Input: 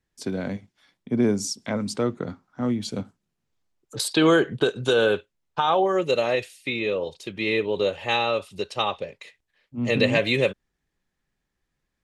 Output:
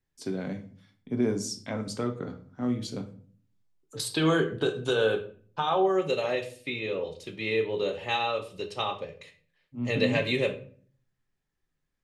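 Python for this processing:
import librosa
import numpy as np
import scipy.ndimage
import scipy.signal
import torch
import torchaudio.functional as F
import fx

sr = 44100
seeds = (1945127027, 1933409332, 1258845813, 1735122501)

y = fx.room_shoebox(x, sr, seeds[0], volume_m3=44.0, walls='mixed', distance_m=0.35)
y = F.gain(torch.from_numpy(y), -6.5).numpy()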